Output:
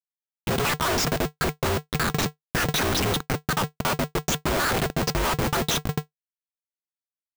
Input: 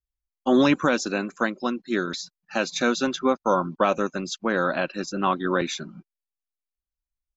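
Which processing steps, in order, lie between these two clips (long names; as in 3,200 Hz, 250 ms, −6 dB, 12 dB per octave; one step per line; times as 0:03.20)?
time-frequency cells dropped at random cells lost 58%
comparator with hysteresis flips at −36 dBFS
ring modulator with a square carrier 150 Hz
level +6.5 dB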